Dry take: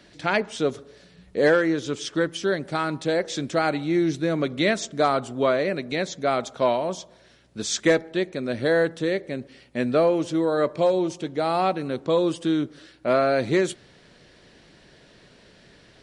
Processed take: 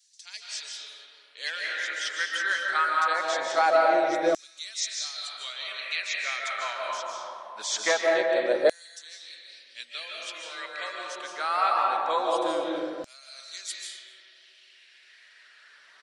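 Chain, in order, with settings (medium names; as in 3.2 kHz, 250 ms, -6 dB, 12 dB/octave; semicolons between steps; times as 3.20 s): vibrato 1.4 Hz 38 cents; reverb removal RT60 0.98 s; delay 247 ms -22 dB; reverberation RT60 2.1 s, pre-delay 110 ms, DRR -1.5 dB; LFO high-pass saw down 0.23 Hz 550–6900 Hz; trim -2.5 dB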